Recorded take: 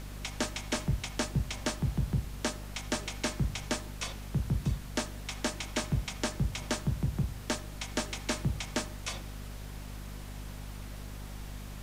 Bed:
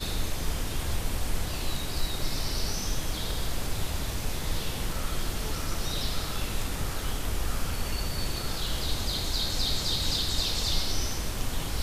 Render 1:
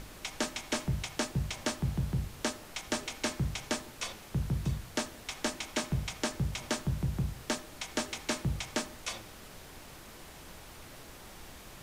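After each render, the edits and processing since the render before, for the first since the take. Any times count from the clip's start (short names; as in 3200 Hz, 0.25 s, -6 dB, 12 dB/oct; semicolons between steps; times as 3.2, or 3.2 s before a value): notches 50/100/150/200/250 Hz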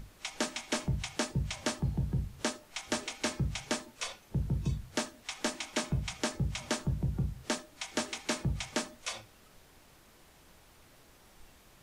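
noise print and reduce 10 dB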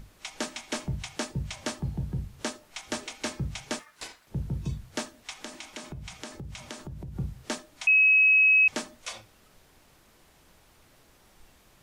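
3.79–4.27 ring modulator 1500 Hz; 5.3–7.16 compressor, threshold -36 dBFS; 7.87–8.68 bleep 2560 Hz -16 dBFS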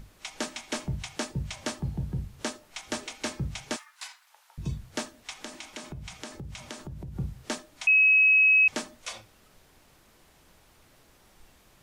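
3.76–4.58 steep high-pass 810 Hz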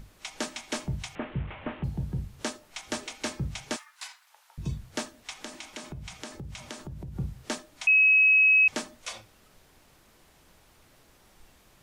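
1.15–1.84 delta modulation 16 kbps, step -39 dBFS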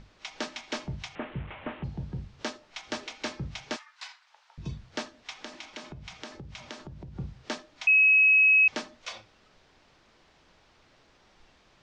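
LPF 5600 Hz 24 dB/oct; low shelf 230 Hz -5.5 dB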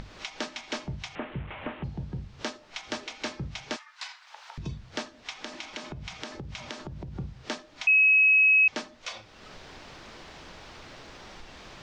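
upward compressor, threshold -32 dBFS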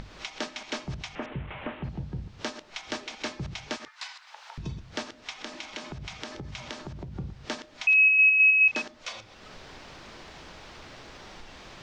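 reverse delay 0.105 s, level -12 dB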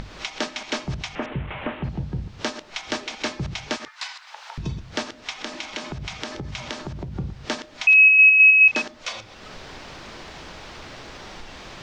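gain +6.5 dB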